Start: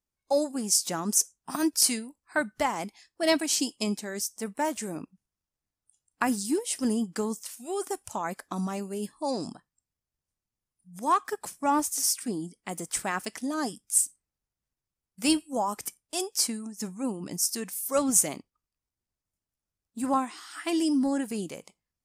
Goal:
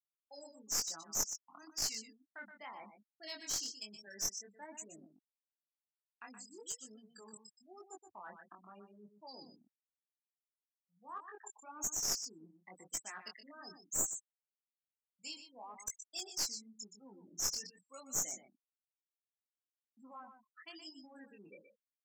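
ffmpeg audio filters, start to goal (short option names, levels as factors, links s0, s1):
-filter_complex "[0:a]afftfilt=real='re*gte(hypot(re,im),0.0398)':imag='im*gte(hypot(re,im),0.0398)':win_size=1024:overlap=0.75,agate=range=0.0224:threshold=0.00398:ratio=3:detection=peak,equalizer=f=110:w=0.46:g=7.5,aresample=16000,aresample=44100,acrossover=split=140[s0][s1];[s1]dynaudnorm=f=150:g=11:m=2[s2];[s0][s2]amix=inputs=2:normalize=0,alimiter=limit=0.282:level=0:latency=1:release=384,areverse,acompressor=threshold=0.0224:ratio=16,areverse,aderivative,flanger=delay=18.5:depth=6.4:speed=1,asplit=2[s3][s4];[s4]adelay=122.4,volume=0.355,highshelf=f=4000:g=-2.76[s5];[s3][s5]amix=inputs=2:normalize=0,aeval=exprs='clip(val(0),-1,0.00631)':c=same,volume=2.66"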